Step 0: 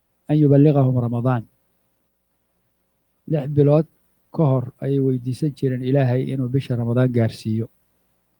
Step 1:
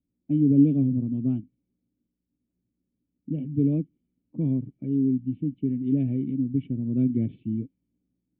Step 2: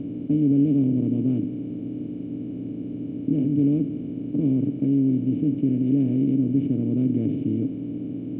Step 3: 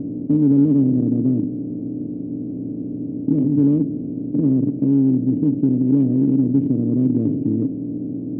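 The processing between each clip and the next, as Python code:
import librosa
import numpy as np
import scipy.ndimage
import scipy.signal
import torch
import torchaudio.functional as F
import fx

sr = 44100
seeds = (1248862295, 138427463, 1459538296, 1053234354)

y1 = fx.env_lowpass(x, sr, base_hz=1400.0, full_db=-13.0)
y1 = fx.formant_cascade(y1, sr, vowel='i')
y1 = fx.low_shelf(y1, sr, hz=470.0, db=8.0)
y1 = y1 * librosa.db_to_amplitude(-5.5)
y2 = fx.bin_compress(y1, sr, power=0.2)
y2 = y2 * librosa.db_to_amplitude(-4.0)
y3 = fx.wiener(y2, sr, points=25)
y3 = fx.lowpass(y3, sr, hz=1200.0, slope=6)
y3 = fx.low_shelf(y3, sr, hz=160.0, db=-3.5)
y3 = y3 * librosa.db_to_amplitude(6.0)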